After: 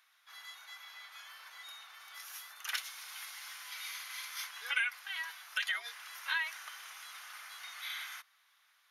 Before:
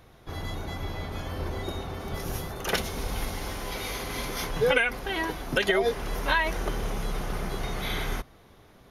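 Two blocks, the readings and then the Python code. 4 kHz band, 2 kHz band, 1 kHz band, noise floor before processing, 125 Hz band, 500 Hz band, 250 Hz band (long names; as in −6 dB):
−6.5 dB, −7.0 dB, −15.5 dB, −55 dBFS, below −40 dB, −38.0 dB, below −40 dB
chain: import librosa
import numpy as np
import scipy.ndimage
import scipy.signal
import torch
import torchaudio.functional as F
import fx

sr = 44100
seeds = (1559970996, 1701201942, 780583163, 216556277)

y = scipy.signal.sosfilt(scipy.signal.butter(4, 1300.0, 'highpass', fs=sr, output='sos'), x)
y = y * librosa.db_to_amplitude(-6.5)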